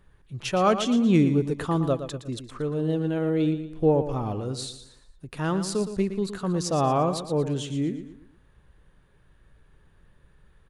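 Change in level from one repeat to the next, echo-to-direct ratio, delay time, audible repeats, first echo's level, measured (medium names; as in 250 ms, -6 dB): -8.0 dB, -10.0 dB, 116 ms, 3, -10.5 dB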